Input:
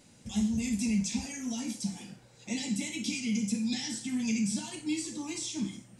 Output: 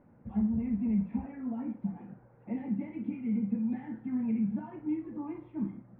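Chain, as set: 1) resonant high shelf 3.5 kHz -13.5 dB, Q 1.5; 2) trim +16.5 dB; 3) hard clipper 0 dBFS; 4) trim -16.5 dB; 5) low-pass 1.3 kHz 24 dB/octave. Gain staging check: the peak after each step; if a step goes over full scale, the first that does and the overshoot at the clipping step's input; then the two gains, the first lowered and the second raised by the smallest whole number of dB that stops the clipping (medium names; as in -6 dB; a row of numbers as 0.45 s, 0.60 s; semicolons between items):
-20.0 dBFS, -3.5 dBFS, -3.5 dBFS, -20.0 dBFS, -20.5 dBFS; nothing clips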